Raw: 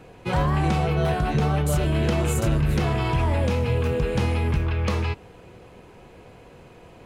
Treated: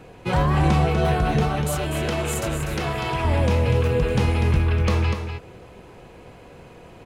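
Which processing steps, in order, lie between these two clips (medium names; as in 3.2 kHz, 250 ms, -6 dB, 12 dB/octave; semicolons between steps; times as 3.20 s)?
1.43–3.25 s: bass shelf 300 Hz -11 dB; delay 245 ms -7.5 dB; trim +2 dB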